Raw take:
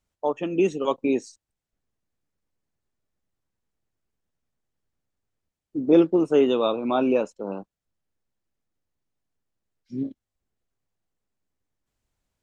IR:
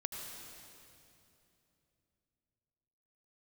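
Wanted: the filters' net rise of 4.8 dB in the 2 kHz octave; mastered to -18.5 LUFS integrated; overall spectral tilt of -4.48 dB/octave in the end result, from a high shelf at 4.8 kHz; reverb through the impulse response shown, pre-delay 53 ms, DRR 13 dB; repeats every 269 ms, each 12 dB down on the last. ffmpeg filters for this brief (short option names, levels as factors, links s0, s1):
-filter_complex "[0:a]equalizer=f=2000:t=o:g=4.5,highshelf=f=4800:g=9,aecho=1:1:269|538|807:0.251|0.0628|0.0157,asplit=2[s0][s1];[1:a]atrim=start_sample=2205,adelay=53[s2];[s1][s2]afir=irnorm=-1:irlink=0,volume=0.224[s3];[s0][s3]amix=inputs=2:normalize=0,volume=1.68"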